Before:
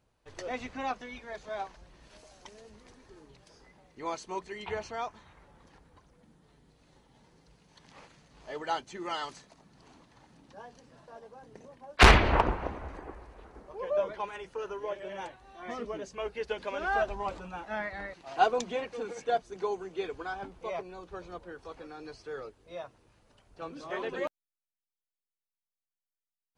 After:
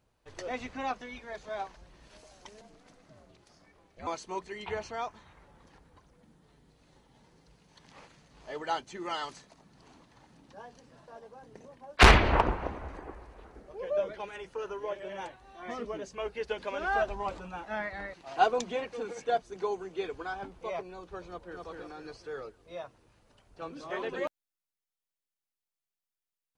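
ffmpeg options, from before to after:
ffmpeg -i in.wav -filter_complex "[0:a]asettb=1/sr,asplit=3[link_01][link_02][link_03];[link_01]atrim=end=2.614[link_04];[link_02]atrim=start=2.61:end=4.07,asetpts=PTS-STARTPTS,afade=type=in:duration=0.004:curve=qsin,afade=type=out:start_time=1.456:duration=0.004:curve=qsin,aeval=exprs='val(0)*sin(2*PI*240*n/s)':channel_layout=same[link_05];[link_03]atrim=start=4.066[link_06];[link_04][link_05]acrossfade=duration=0.004:curve1=hsin:curve2=qsin[link_07];[link_07][link_06]acrossfade=duration=0.004:curve1=qsin:curve2=hsin,asettb=1/sr,asplit=3[link_08][link_09][link_10];[link_08]atrim=end=13.544[link_11];[link_09]atrim=start=13.54:end=14.37,asetpts=PTS-STARTPTS,afade=type=in:duration=0.004:curve=qsin,afade=type=out:start_time=0.826:duration=0.004:curve=qsin,equalizer=frequency=1000:width_type=o:width=0.46:gain=-9.5[link_12];[link_10]atrim=start=14.366[link_13];[link_11][link_12]acrossfade=duration=0.004:curve1=hsin:curve2=qsin[link_14];[link_14][link_13]acrossfade=duration=0.004:curve1=qsin:curve2=hsin,asplit=2[link_15][link_16];[link_16]afade=type=in:start_time=21.26:duration=0.01,afade=type=out:start_time=21.66:duration=0.01,aecho=0:1:250|500|750|1000|1250|1500:0.749894|0.337452|0.151854|0.0683341|0.0307503|0.0138377[link_17];[link_15][link_17]amix=inputs=2:normalize=0" out.wav

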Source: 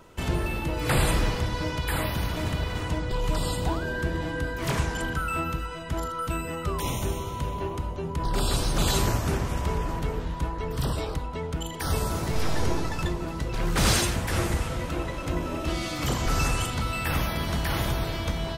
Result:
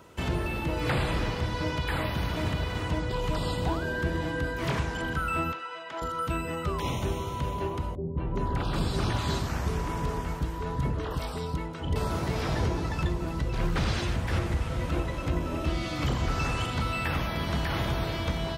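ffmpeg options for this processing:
ffmpeg -i in.wav -filter_complex "[0:a]asettb=1/sr,asplit=3[link_01][link_02][link_03];[link_01]atrim=end=5.524[link_04];[link_02]atrim=start=5.52:end=6.02,asetpts=PTS-STARTPTS,afade=type=in:duration=0.004:curve=qsin,afade=type=out:start_time=0.496:duration=0.004:curve=qsin,highpass=590,lowpass=4100[link_05];[link_03]atrim=start=6.016[link_06];[link_04][link_05]acrossfade=duration=0.004:curve1=hsin:curve2=qsin[link_07];[link_07][link_06]acrossfade=duration=0.004:curve1=qsin:curve2=hsin,asettb=1/sr,asplit=3[link_08][link_09][link_10];[link_08]atrim=end=7.954[link_11];[link_09]atrim=start=7.95:end=11.96,asetpts=PTS-STARTPTS,afade=type=in:duration=0.004:curve=qsin,afade=type=out:start_time=4.006:duration=0.004:curve=qsin,acrossover=split=570|3100[link_12][link_13][link_14];[link_13]adelay=220[link_15];[link_14]adelay=400[link_16];[link_12][link_15][link_16]amix=inputs=3:normalize=0,atrim=end_sample=176841[link_17];[link_10]atrim=start=11.956[link_18];[link_11][link_17]acrossfade=duration=0.004:curve1=hsin:curve2=qsin[link_19];[link_19][link_18]acrossfade=duration=0.004:curve1=qsin:curve2=hsin,asettb=1/sr,asplit=3[link_20][link_21][link_22];[link_20]atrim=end=12.494[link_23];[link_21]atrim=start=12.49:end=16.32,asetpts=PTS-STARTPTS,afade=type=in:duration=0.004:curve=qsin,afade=type=out:start_time=3.826:duration=0.004:curve=qsin,lowshelf=frequency=120:gain=7.5[link_24];[link_22]atrim=start=16.316[link_25];[link_23][link_24]acrossfade=duration=0.004:curve1=hsin:curve2=qsin[link_26];[link_26][link_25]acrossfade=duration=0.004:curve1=qsin:curve2=hsin,highpass=49,acrossover=split=5000[link_27][link_28];[link_28]acompressor=threshold=-51dB:ratio=4:attack=1:release=60[link_29];[link_27][link_29]amix=inputs=2:normalize=0,alimiter=limit=-17.5dB:level=0:latency=1:release=466" out.wav

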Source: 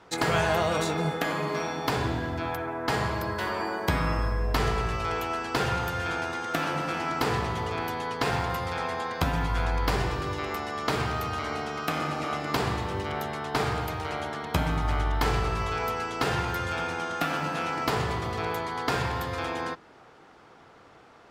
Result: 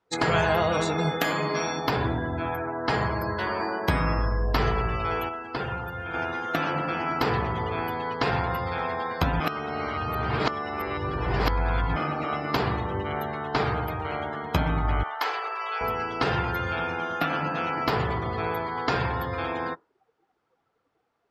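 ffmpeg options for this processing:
ffmpeg -i in.wav -filter_complex "[0:a]asettb=1/sr,asplit=3[link_01][link_02][link_03];[link_01]atrim=end=0.984[link_04];[link_02]atrim=start=0.98:end=1.8,asetpts=PTS-STARTPTS,afade=type=in:duration=0.004:curve=qsin,afade=type=out:start_time=0.816:duration=0.004:curve=qsin,equalizer=frequency=14000:width_type=o:width=2.5:gain=7.5[link_05];[link_03]atrim=start=1.796[link_06];[link_04][link_05]acrossfade=duration=0.004:curve1=hsin:curve2=qsin[link_07];[link_07][link_06]acrossfade=duration=0.004:curve1=qsin:curve2=hsin,asettb=1/sr,asplit=3[link_08][link_09][link_10];[link_08]atrim=end=15.034[link_11];[link_09]atrim=start=15.03:end=15.81,asetpts=PTS-STARTPTS,afade=type=in:duration=0.004:curve=qsin,afade=type=out:start_time=0.776:duration=0.004:curve=qsin,highpass=710[link_12];[link_10]atrim=start=15.806[link_13];[link_11][link_12]acrossfade=duration=0.004:curve1=hsin:curve2=qsin[link_14];[link_14][link_13]acrossfade=duration=0.004:curve1=qsin:curve2=hsin,asplit=5[link_15][link_16][link_17][link_18][link_19];[link_15]atrim=end=5.292[link_20];[link_16]atrim=start=5.288:end=6.142,asetpts=PTS-STARTPTS,volume=-5.5dB[link_21];[link_17]atrim=start=6.138:end=9.402[link_22];[link_18]atrim=start=9.398:end=11.962,asetpts=PTS-STARTPTS,areverse[link_23];[link_19]atrim=start=11.958[link_24];[link_20][link_21]acrossfade=duration=0.004:curve1=hsin:curve2=hsin[link_25];[link_25][link_22]acrossfade=duration=0.004:curve1=hsin:curve2=hsin[link_26];[link_26][link_23]acrossfade=duration=0.004:curve1=hsin:curve2=hsin[link_27];[link_27][link_24]acrossfade=duration=0.004:curve1=hsin:curve2=hsin,afftdn=noise_reduction=25:noise_floor=-39,volume=2dB" out.wav

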